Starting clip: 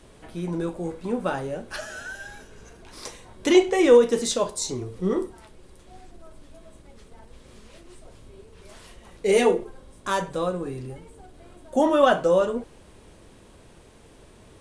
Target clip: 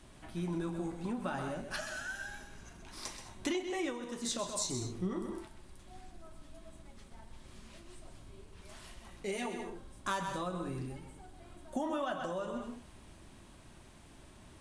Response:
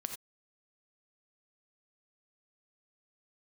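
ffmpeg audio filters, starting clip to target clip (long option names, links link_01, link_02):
-filter_complex "[0:a]asplit=2[link_01][link_02];[1:a]atrim=start_sample=2205,adelay=129[link_03];[link_02][link_03]afir=irnorm=-1:irlink=0,volume=-7.5dB[link_04];[link_01][link_04]amix=inputs=2:normalize=0,acompressor=threshold=-25dB:ratio=10,equalizer=frequency=470:width=4.3:gain=-15,volume=-4.5dB"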